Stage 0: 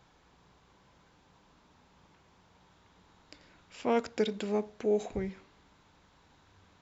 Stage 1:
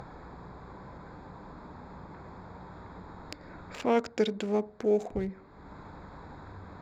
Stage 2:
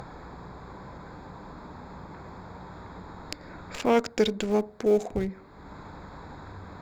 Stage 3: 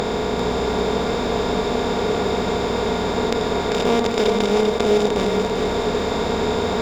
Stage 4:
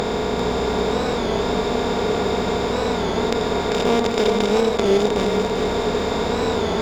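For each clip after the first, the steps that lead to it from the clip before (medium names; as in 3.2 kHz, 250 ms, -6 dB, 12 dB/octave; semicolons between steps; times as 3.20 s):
local Wiener filter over 15 samples; upward compressor, threshold -34 dBFS; trim +2.5 dB
treble shelf 3.8 kHz +6.5 dB; in parallel at -10.5 dB: Schmitt trigger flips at -27 dBFS; on the sum: trim +3 dB
spectral levelling over time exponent 0.2; on a send: two-band feedback delay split 300 Hz, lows 83 ms, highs 394 ms, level -5 dB; on the sum: trim -1 dB
warped record 33 1/3 rpm, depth 100 cents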